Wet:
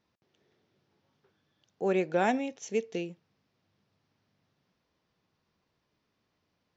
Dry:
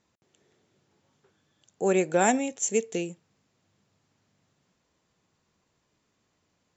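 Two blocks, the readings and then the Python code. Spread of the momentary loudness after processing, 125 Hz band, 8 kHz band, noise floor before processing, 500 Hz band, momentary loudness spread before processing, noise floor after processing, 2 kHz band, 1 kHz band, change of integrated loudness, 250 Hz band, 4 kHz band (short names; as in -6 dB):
10 LU, -4.0 dB, n/a, -75 dBFS, -4.0 dB, 11 LU, -79 dBFS, -4.0 dB, -4.0 dB, -4.5 dB, -4.0 dB, -4.0 dB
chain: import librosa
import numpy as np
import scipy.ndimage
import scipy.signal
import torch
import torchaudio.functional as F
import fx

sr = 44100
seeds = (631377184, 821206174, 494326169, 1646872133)

y = scipy.signal.sosfilt(scipy.signal.butter(8, 5700.0, 'lowpass', fs=sr, output='sos'), x)
y = y * librosa.db_to_amplitude(-4.0)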